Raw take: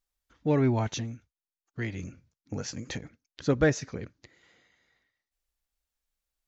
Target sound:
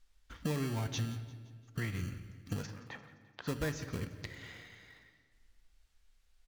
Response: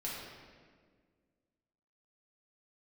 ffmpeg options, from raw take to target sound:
-filter_complex "[0:a]aemphasis=mode=reproduction:type=bsi,asplit=2[a][b];[b]acrusher=samples=30:mix=1:aa=0.000001,volume=-10.5dB[c];[a][c]amix=inputs=2:normalize=0,acompressor=threshold=-39dB:ratio=5,asplit=3[d][e][f];[d]afade=t=out:st=2.65:d=0.02[g];[e]bandpass=f=940:t=q:w=1.8:csg=0,afade=t=in:st=2.65:d=0.02,afade=t=out:st=3.47:d=0.02[h];[f]afade=t=in:st=3.47:d=0.02[i];[g][h][i]amix=inputs=3:normalize=0,tiltshelf=f=970:g=-7,aecho=1:1:173|346|519|692:0.119|0.0606|0.0309|0.0158,asplit=2[j][k];[1:a]atrim=start_sample=2205[l];[k][l]afir=irnorm=-1:irlink=0,volume=-10dB[m];[j][m]amix=inputs=2:normalize=0,volume=7.5dB"

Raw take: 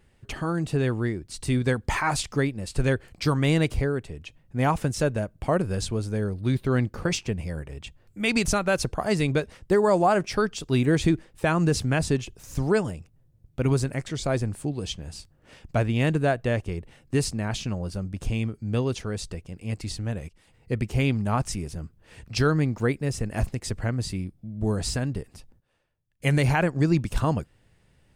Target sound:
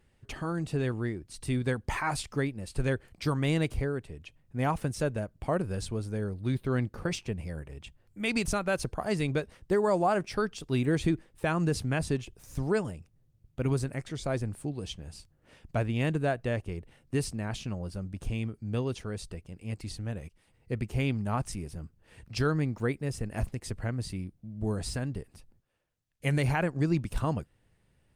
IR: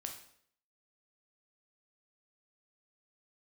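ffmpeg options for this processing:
-af "volume=-5.5dB" -ar 48000 -c:a libopus -b:a 48k

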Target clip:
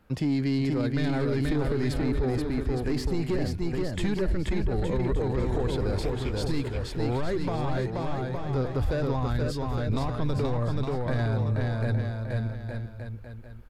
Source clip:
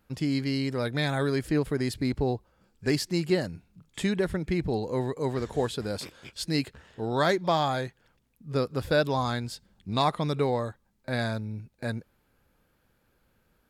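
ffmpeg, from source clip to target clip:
-filter_complex "[0:a]asoftclip=type=tanh:threshold=-22.5dB,asubboost=boost=10:cutoff=55,acrossover=split=340[a][b];[b]acompressor=threshold=-37dB:ratio=6[c];[a][c]amix=inputs=2:normalize=0,highshelf=f=3.7k:g=-10,aecho=1:1:480|864|1171|1417|1614:0.631|0.398|0.251|0.158|0.1,alimiter=level_in=2dB:limit=-24dB:level=0:latency=1:release=22,volume=-2dB,volume=7dB"

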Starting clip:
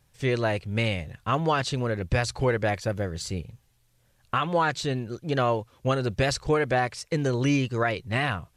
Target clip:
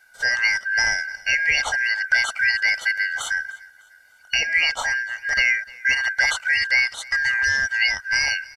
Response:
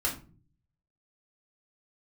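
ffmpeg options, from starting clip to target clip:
-filter_complex "[0:a]afftfilt=real='real(if(lt(b,272),68*(eq(floor(b/68),0)*2+eq(floor(b/68),1)*0+eq(floor(b/68),2)*3+eq(floor(b/68),3)*1)+mod(b,68),b),0)':imag='imag(if(lt(b,272),68*(eq(floor(b/68),0)*2+eq(floor(b/68),1)*0+eq(floor(b/68),2)*3+eq(floor(b/68),3)*1)+mod(b,68),b),0)':win_size=2048:overlap=0.75,aecho=1:1:1.4:0.71,asplit=2[a][b];[b]acompressor=threshold=-31dB:ratio=6,volume=-2dB[c];[a][c]amix=inputs=2:normalize=0,equalizer=f=160:t=o:w=0.67:g=-9,equalizer=f=400:t=o:w=0.67:g=3,equalizer=f=1k:t=o:w=0.67:g=6,aecho=1:1:301|602|903:0.0708|0.0283|0.0113"

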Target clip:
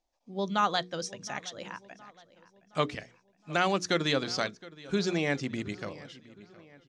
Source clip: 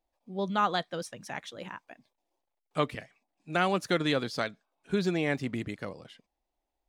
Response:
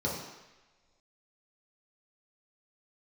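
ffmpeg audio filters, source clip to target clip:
-filter_complex "[0:a]lowpass=f=6.1k:t=q:w=2.7,bandreject=f=60:t=h:w=6,bandreject=f=120:t=h:w=6,bandreject=f=180:t=h:w=6,bandreject=f=240:t=h:w=6,bandreject=f=300:t=h:w=6,bandreject=f=360:t=h:w=6,bandreject=f=420:t=h:w=6,bandreject=f=480:t=h:w=6,asplit=2[a][b];[b]adelay=717,lowpass=f=4.5k:p=1,volume=-19.5dB,asplit=2[c][d];[d]adelay=717,lowpass=f=4.5k:p=1,volume=0.48,asplit=2[e][f];[f]adelay=717,lowpass=f=4.5k:p=1,volume=0.48,asplit=2[g][h];[h]adelay=717,lowpass=f=4.5k:p=1,volume=0.48[i];[a][c][e][g][i]amix=inputs=5:normalize=0"

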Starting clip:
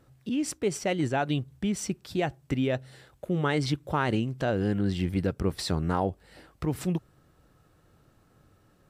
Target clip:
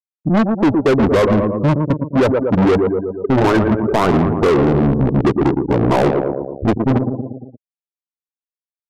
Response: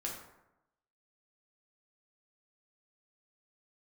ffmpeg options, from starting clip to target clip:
-filter_complex "[0:a]adynamicequalizer=threshold=0.00794:dfrequency=560:dqfactor=1.7:tfrequency=560:tqfactor=1.7:attack=5:release=100:ratio=0.375:range=2.5:mode=boostabove:tftype=bell,acrusher=bits=5:dc=4:mix=0:aa=0.000001,highpass=61,equalizer=f=3.5k:w=1.5:g=-10,afftfilt=real='re*gte(hypot(re,im),0.0708)':imag='im*gte(hypot(re,im),0.0708)':win_size=1024:overlap=0.75,asplit=2[a][b];[b]adelay=116,lowpass=f=3.5k:p=1,volume=-14dB,asplit=2[c][d];[d]adelay=116,lowpass=f=3.5k:p=1,volume=0.48,asplit=2[e][f];[f]adelay=116,lowpass=f=3.5k:p=1,volume=0.48,asplit=2[g][h];[h]adelay=116,lowpass=f=3.5k:p=1,volume=0.48,asplit=2[i][j];[j]adelay=116,lowpass=f=3.5k:p=1,volume=0.48[k];[a][c][e][g][i][k]amix=inputs=6:normalize=0,acrossover=split=420|3000[l][m][n];[m]acompressor=threshold=-27dB:ratio=3[o];[l][o][n]amix=inputs=3:normalize=0,asplit=2[p][q];[q]highpass=f=720:p=1,volume=31dB,asoftclip=type=tanh:threshold=-12.5dB[r];[p][r]amix=inputs=2:normalize=0,lowpass=f=1.8k:p=1,volume=-6dB,asplit=2[s][t];[t]acompressor=threshold=-32dB:ratio=16,volume=0dB[u];[s][u]amix=inputs=2:normalize=0,asetrate=32097,aresample=44100,atempo=1.37395,crystalizer=i=3:c=0,volume=5.5dB"

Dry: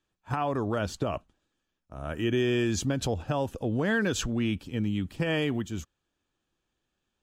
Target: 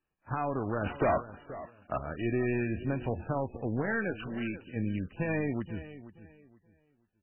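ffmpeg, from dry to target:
-filter_complex "[0:a]asplit=3[a][b][c];[a]afade=t=out:st=2.56:d=0.02[d];[b]bandreject=f=50:t=h:w=6,bandreject=f=100:t=h:w=6,bandreject=f=150:t=h:w=6,bandreject=f=200:t=h:w=6,bandreject=f=250:t=h:w=6,bandreject=f=300:t=h:w=6,bandreject=f=350:t=h:w=6,afade=t=in:st=2.56:d=0.02,afade=t=out:st=3.21:d=0.02[e];[c]afade=t=in:st=3.21:d=0.02[f];[d][e][f]amix=inputs=3:normalize=0,asplit=3[g][h][i];[g]afade=t=out:st=3.81:d=0.02[j];[h]highpass=f=240:p=1,afade=t=in:st=3.81:d=0.02,afade=t=out:st=4.75:d=0.02[k];[i]afade=t=in:st=4.75:d=0.02[l];[j][k][l]amix=inputs=3:normalize=0,aeval=exprs='0.2*(cos(1*acos(clip(val(0)/0.2,-1,1)))-cos(1*PI/2))+0.0316*(cos(2*acos(clip(val(0)/0.2,-1,1)))-cos(2*PI/2))+0.0251*(cos(3*acos(clip(val(0)/0.2,-1,1)))-cos(3*PI/2))':c=same,asoftclip=type=tanh:threshold=-17dB,asettb=1/sr,asplit=3[m][n][o];[m]atrim=end=0.864[p];[n]atrim=start=0.86:end=1.98,asetpts=PTS-STARTPTS,afade=t=in:d=0.004:c=qsin,afade=t=out:st=1.116:d=0.004:c=qsin,asplit=2[q][r];[r]highpass=f=720:p=1,volume=34dB,asoftclip=type=tanh:threshold=-18.5dB[s];[q][s]amix=inputs=2:normalize=0,lowpass=f=2.1k:p=1,volume=-6dB[t];[o]atrim=start=1.976[u];[p][t]acrossfade=d=0.004:c1=hsin:c2=qsin[v];[v][u]acrossfade=d=0.004:c1=qsin:c2=hsin,asplit=2[w][x];[x]adelay=478,lowpass=f=4.3k:p=1,volume=-15dB,asplit=2[y][z];[z]adelay=478,lowpass=f=4.3k:p=1,volume=0.26,asplit=2[aa][ab];[ab]adelay=478,lowpass=f=4.3k:p=1,volume=0.26[ac];[w][y][aa][ac]amix=inputs=4:normalize=0" -ar 12000 -c:a libmp3lame -b:a 8k

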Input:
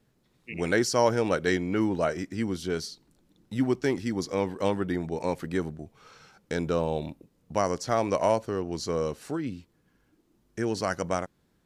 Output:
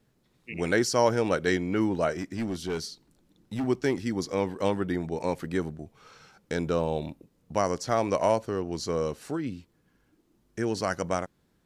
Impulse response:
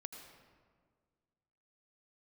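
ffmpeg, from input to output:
-filter_complex "[0:a]asettb=1/sr,asplit=3[a][b][c];[a]atrim=end=2.124[d];[b]atrim=start=2.12:end=3.64,asetpts=PTS-STARTPTS,afade=t=in:d=0.004:c=qsin,afade=t=out:st=1.516:d=0.004:c=qsin,asoftclip=type=hard:threshold=-26dB[e];[c]atrim=start=3.636[f];[d][e]acrossfade=d=0.004:c1=hsin:c2=qsin[g];[g][f]acrossfade=d=0.004:c1=qsin:c2=hsin"

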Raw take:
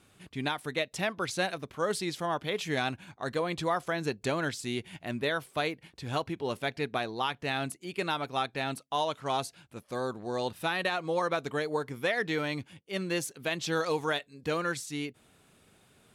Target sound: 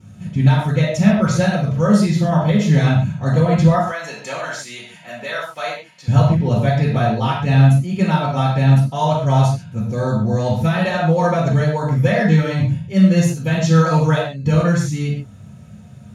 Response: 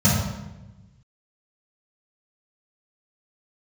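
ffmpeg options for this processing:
-filter_complex "[0:a]asettb=1/sr,asplit=3[a][b][c];[a]atrim=end=3.774[d];[b]atrim=start=3.77:end=6.08,asetpts=PTS-STARTPTS,afade=t=in:d=0.004:c=qsin,afade=t=out:st=2.306:d=0.004:c=qsin,highpass=790[e];[c]atrim=start=6.076[f];[d][e]acrossfade=d=0.004:c1=hsin:c2=qsin[g];[g][f]acrossfade=d=0.004:c1=qsin:c2=hsin[h];[1:a]atrim=start_sample=2205,atrim=end_sample=6615[i];[h][i]afir=irnorm=-1:irlink=0,volume=-8dB"

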